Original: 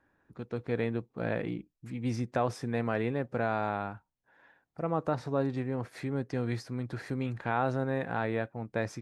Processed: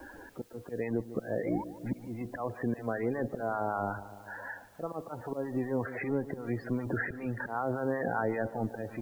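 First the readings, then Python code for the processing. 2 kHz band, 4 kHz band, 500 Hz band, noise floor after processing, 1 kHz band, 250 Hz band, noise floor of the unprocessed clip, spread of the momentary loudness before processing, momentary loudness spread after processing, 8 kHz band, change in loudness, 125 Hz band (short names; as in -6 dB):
0.0 dB, under -10 dB, -1.0 dB, -51 dBFS, -1.5 dB, -0.5 dB, -81 dBFS, 8 LU, 10 LU, n/a, -1.5 dB, -4.5 dB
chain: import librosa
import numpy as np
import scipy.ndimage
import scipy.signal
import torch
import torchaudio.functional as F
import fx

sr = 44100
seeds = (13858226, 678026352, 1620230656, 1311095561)

p1 = fx.law_mismatch(x, sr, coded='mu')
p2 = scipy.signal.sosfilt(scipy.signal.bessel(6, 2200.0, 'lowpass', norm='mag', fs=sr, output='sos'), p1)
p3 = fx.peak_eq(p2, sr, hz=140.0, db=-10.0, octaves=1.1)
p4 = fx.auto_swell(p3, sr, attack_ms=488.0)
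p5 = fx.over_compress(p4, sr, threshold_db=-41.0, ratio=-1.0)
p6 = p4 + F.gain(torch.from_numpy(p5), 2.0).numpy()
p7 = fx.spec_topn(p6, sr, count=32)
p8 = fx.harmonic_tremolo(p7, sr, hz=5.2, depth_pct=70, crossover_hz=820.0)
p9 = fx.quant_dither(p8, sr, seeds[0], bits=12, dither='triangular')
p10 = fx.spec_paint(p9, sr, seeds[1], shape='rise', start_s=1.38, length_s=0.26, low_hz=380.0, high_hz=1000.0, level_db=-43.0)
p11 = fx.echo_wet_lowpass(p10, sr, ms=147, feedback_pct=54, hz=1100.0, wet_db=-15.0)
p12 = fx.band_squash(p11, sr, depth_pct=40)
y = F.gain(torch.from_numpy(p12), 3.5).numpy()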